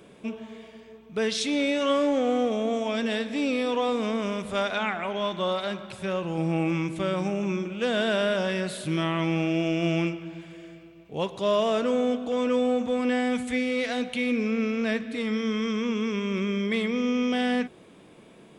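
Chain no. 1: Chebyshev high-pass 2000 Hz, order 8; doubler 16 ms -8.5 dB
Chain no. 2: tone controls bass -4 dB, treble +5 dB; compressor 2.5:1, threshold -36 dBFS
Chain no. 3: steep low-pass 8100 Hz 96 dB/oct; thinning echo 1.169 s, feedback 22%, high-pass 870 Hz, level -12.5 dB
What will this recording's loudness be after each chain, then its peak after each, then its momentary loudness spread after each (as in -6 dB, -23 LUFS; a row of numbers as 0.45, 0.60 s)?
-35.5, -35.5, -26.5 LUFS; -16.0, -21.0, -12.5 dBFS; 10, 9, 12 LU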